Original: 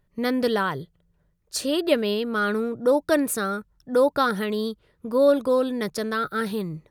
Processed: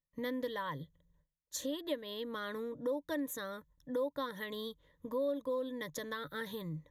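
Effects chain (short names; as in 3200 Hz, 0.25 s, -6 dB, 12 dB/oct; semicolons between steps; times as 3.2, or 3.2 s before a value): gate with hold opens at -57 dBFS; ripple EQ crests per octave 1.1, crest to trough 14 dB; compressor 2.5:1, threshold -30 dBFS, peak gain reduction 14.5 dB; gain -9 dB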